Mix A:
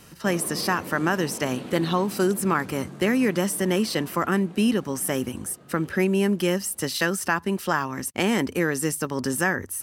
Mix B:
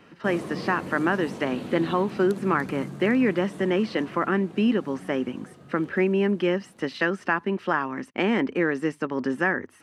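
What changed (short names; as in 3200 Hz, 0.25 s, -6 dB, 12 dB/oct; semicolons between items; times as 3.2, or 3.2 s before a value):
speech: add Chebyshev band-pass 260–2400 Hz, order 2; master: add low shelf 130 Hz +9 dB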